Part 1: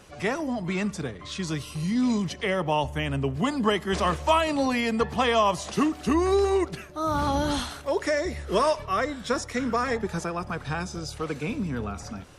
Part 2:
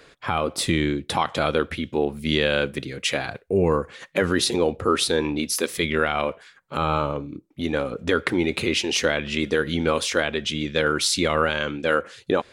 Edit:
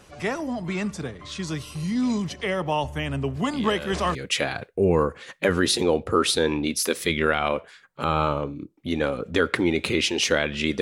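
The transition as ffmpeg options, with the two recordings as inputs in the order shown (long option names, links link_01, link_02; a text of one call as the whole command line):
ffmpeg -i cue0.wav -i cue1.wav -filter_complex "[1:a]asplit=2[link_01][link_02];[0:a]apad=whole_dur=10.81,atrim=end=10.81,atrim=end=4.152[link_03];[link_02]atrim=start=2.878:end=9.54[link_04];[link_01]atrim=start=2.26:end=2.88,asetpts=PTS-STARTPTS,volume=-14dB,afade=type=in:duration=0.004:curve=hsin,afade=type=out:start_time=0.616:duration=0.004:curve=hsin,adelay=155673S[link_05];[link_03][link_04]acrossfade=duration=0.004:curve1=hsin:curve2=hsin[link_06];[link_06][link_05]amix=inputs=2:normalize=0" out.wav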